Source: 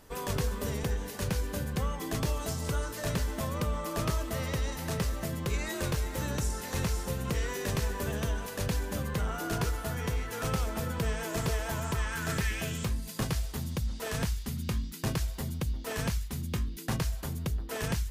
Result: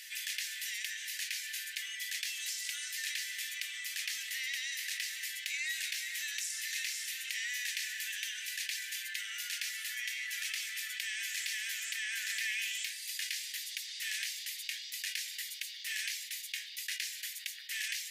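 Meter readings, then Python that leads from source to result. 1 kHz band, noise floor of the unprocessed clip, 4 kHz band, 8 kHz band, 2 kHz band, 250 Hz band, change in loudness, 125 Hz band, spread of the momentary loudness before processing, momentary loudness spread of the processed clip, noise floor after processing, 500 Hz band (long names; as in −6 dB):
below −25 dB, −40 dBFS, +5.0 dB, +2.5 dB, +3.0 dB, below −40 dB, −3.0 dB, below −40 dB, 3 LU, 4 LU, −46 dBFS, below −40 dB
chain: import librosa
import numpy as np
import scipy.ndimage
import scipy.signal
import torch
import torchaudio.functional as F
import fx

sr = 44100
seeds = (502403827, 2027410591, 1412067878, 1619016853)

y = scipy.signal.sosfilt(scipy.signal.butter(12, 1800.0, 'highpass', fs=sr, output='sos'), x)
y = fx.high_shelf(y, sr, hz=5800.0, db=-8.5)
y = fx.env_flatten(y, sr, amount_pct=50)
y = F.gain(torch.from_numpy(y), 4.0).numpy()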